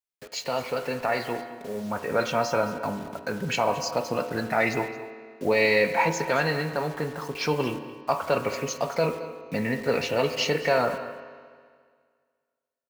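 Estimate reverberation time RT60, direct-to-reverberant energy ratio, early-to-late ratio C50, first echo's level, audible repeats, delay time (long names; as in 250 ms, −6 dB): 1.9 s, 7.5 dB, 8.5 dB, −16.0 dB, 1, 221 ms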